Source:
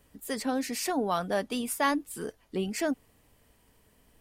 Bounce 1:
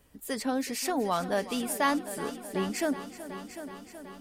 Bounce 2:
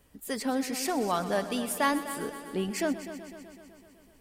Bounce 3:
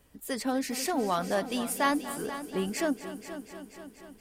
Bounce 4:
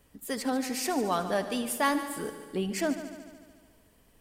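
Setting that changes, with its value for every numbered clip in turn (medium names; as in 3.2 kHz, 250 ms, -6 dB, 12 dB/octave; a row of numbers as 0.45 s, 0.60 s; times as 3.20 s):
multi-head delay, time: 374 ms, 126 ms, 241 ms, 73 ms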